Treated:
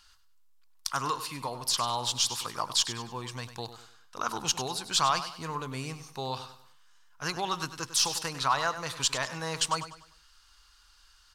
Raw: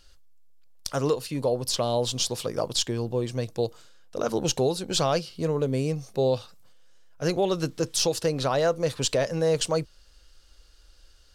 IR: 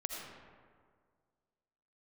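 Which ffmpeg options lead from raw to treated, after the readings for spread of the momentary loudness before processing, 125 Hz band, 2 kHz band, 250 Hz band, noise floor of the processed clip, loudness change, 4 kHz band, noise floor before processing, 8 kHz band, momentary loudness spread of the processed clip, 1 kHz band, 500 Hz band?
7 LU, -10.5 dB, +2.5 dB, -11.5 dB, -61 dBFS, -3.5 dB, +0.5 dB, -55 dBFS, +0.5 dB, 13 LU, +2.5 dB, -15.0 dB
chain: -af "lowshelf=f=740:t=q:w=3:g=-10.5,aecho=1:1:99|198|297|396:0.251|0.0904|0.0326|0.0117"

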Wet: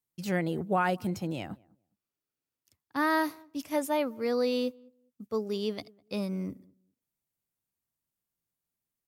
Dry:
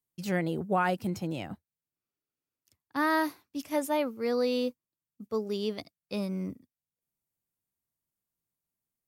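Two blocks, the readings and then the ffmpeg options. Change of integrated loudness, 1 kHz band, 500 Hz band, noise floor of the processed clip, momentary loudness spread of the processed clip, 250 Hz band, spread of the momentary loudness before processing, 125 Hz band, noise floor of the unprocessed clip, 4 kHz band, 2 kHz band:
0.0 dB, 0.0 dB, 0.0 dB, under -85 dBFS, 12 LU, 0.0 dB, 12 LU, 0.0 dB, under -85 dBFS, 0.0 dB, 0.0 dB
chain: -filter_complex "[0:a]asplit=2[s0][s1];[s1]adelay=204,lowpass=f=810:p=1,volume=0.0631,asplit=2[s2][s3];[s3]adelay=204,lowpass=f=810:p=1,volume=0.2[s4];[s0][s2][s4]amix=inputs=3:normalize=0"

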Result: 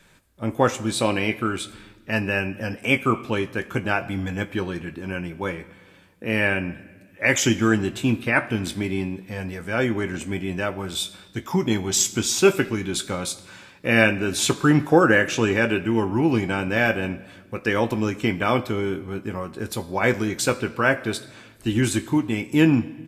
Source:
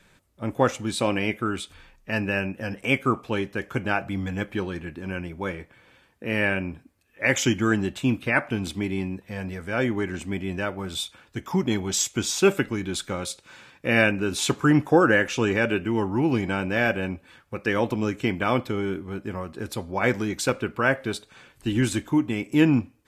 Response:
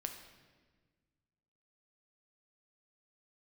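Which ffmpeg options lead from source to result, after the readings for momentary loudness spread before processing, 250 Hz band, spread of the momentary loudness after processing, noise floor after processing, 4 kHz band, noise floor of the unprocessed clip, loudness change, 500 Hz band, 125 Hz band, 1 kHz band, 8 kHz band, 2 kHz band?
12 LU, +2.0 dB, 13 LU, -51 dBFS, +3.0 dB, -60 dBFS, +2.5 dB, +2.0 dB, +2.0 dB, +2.0 dB, +4.5 dB, +2.5 dB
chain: -filter_complex "[0:a]asplit=2[s0][s1];[s1]adelay=18,volume=0.266[s2];[s0][s2]amix=inputs=2:normalize=0,asplit=2[s3][s4];[s4]highshelf=f=4700:g=10[s5];[1:a]atrim=start_sample=2205[s6];[s5][s6]afir=irnorm=-1:irlink=0,volume=0.501[s7];[s3][s7]amix=inputs=2:normalize=0,volume=0.891"

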